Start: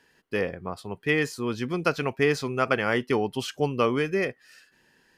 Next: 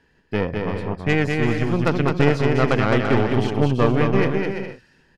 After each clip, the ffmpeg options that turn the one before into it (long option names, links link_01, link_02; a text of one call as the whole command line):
ffmpeg -i in.wav -af "aemphasis=mode=reproduction:type=bsi,aeval=exprs='0.531*(cos(1*acos(clip(val(0)/0.531,-1,1)))-cos(1*PI/2))+0.0668*(cos(6*acos(clip(val(0)/0.531,-1,1)))-cos(6*PI/2))':channel_layout=same,aecho=1:1:210|336|411.6|457|484.2:0.631|0.398|0.251|0.158|0.1,volume=1dB" out.wav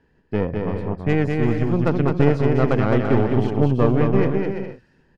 ffmpeg -i in.wav -af "tiltshelf=frequency=1400:gain=6,volume=-4.5dB" out.wav